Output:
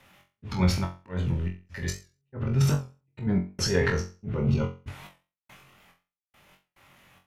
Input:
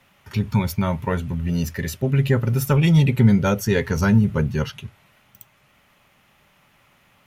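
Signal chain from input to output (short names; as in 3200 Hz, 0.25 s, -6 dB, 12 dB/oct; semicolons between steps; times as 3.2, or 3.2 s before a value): treble ducked by the level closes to 1800 Hz, closed at -13.5 dBFS; 2.71–3.27 comb 6.4 ms, depth 63%; in parallel at +2 dB: limiter -21.5 dBFS, peak gain reduction 18 dB; on the sum: transient shaper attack -9 dB, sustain +11 dB; 4.36–4.84 Butterworth band-stop 1700 Hz, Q 2.7; step gate "x.xx.xx.x..xx.." 71 bpm -60 dB; auto swell 0.191 s; on a send: flutter echo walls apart 3.8 m, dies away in 0.32 s; on the sum: record warp 78 rpm, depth 100 cents; gain -8.5 dB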